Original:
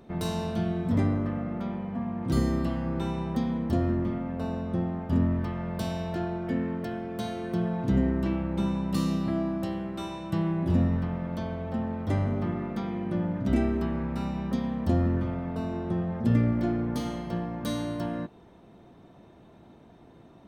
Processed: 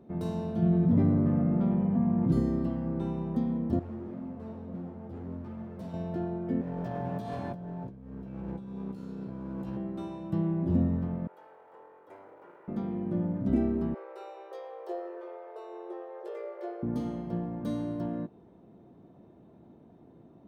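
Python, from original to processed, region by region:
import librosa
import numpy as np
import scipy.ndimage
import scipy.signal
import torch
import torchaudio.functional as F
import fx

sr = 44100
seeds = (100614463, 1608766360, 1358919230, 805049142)

y = fx.chain(x, sr, fx.lowpass(hz=4700.0, slope=12),
    fx.peak_eq(hz=160.0, db=12.0, octaves=0.24),
    fx.env_flatten(amount_pct=50), at=(0.62, 2.32))
y = fx.chain(y, sr, fx.clip_hard(threshold_db=-33.0),
    fx.ensemble(), at=(3.79, 5.94))
y = fx.chain(y, sr, fx.lower_of_two(delay_ms=1.2),
    fx.doubler(ms=16.0, db=-3.0),
    fx.over_compress(threshold_db=-36.0, ratio=-1.0), at=(6.61, 9.77))
y = fx.chain(y, sr, fx.lower_of_two(delay_ms=2.1),
    fx.highpass(hz=1100.0, slope=12),
    fx.peak_eq(hz=4800.0, db=-14.0, octaves=2.0), at=(11.27, 12.68))
y = fx.chain(y, sr, fx.brickwall_highpass(low_hz=350.0),
    fx.doubler(ms=19.0, db=-5.0), at=(13.94, 16.83))
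y = fx.highpass(y, sr, hz=190.0, slope=6)
y = fx.tilt_shelf(y, sr, db=9.5, hz=850.0)
y = y * 10.0 ** (-6.5 / 20.0)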